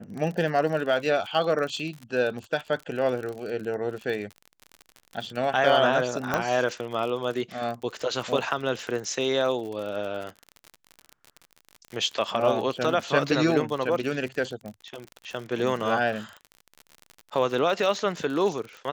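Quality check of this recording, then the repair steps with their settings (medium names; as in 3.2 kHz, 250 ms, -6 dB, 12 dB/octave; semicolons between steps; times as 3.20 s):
crackle 50 per s -32 dBFS
6.34 s: pop -10 dBFS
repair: de-click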